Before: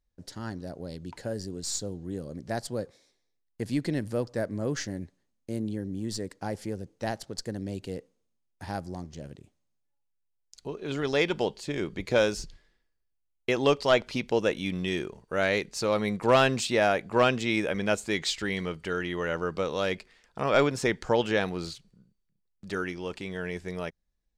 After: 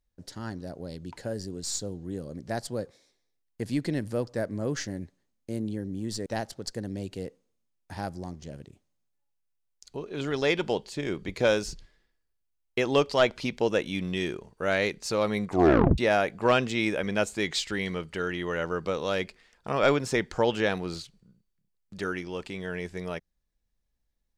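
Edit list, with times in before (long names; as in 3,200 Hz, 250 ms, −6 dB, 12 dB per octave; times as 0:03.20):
0:06.26–0:06.97: remove
0:16.18: tape stop 0.51 s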